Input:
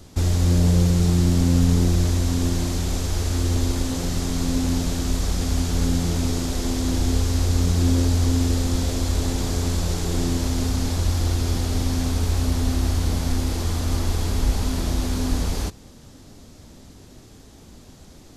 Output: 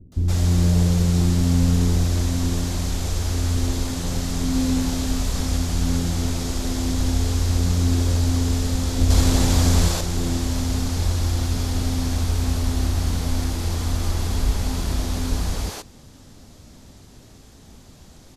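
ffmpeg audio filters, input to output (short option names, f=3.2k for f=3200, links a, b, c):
-filter_complex "[0:a]asettb=1/sr,asplit=3[a][b][c];[a]atrim=end=4.404[d];[b]atrim=start=4.4:end=5.46,asetpts=PTS-STARTPTS,afade=t=in:d=0.004:c=qsin,afade=t=out:st=1.056:d=0.004:c=qsin,asplit=2[e][f];[f]adelay=27,volume=-5.5dB[g];[e][g]amix=inputs=2:normalize=0,atrim=end_sample=46746[h];[c]atrim=start=5.456[i];[d][h]acrossfade=d=0.004:c1=hsin:c2=qsin[j];[j][i]acrossfade=d=0.004:c1=qsin:c2=hsin,asettb=1/sr,asplit=3[k][l][m];[k]atrim=end=8.984[n];[l]atrim=start=8.98:end=9.89,asetpts=PTS-STARTPTS,afade=t=in:d=0.004:c=qsin,afade=t=out:st=0.906:d=0.004:c=qsin,acontrast=73[o];[m]atrim=start=9.886[p];[n][o]acrossfade=d=0.004:c1=hsin:c2=qsin[q];[q][p]acrossfade=d=0.004:c1=qsin:c2=hsin,acrossover=split=360[r][s];[s]adelay=120[t];[r][t]amix=inputs=2:normalize=0"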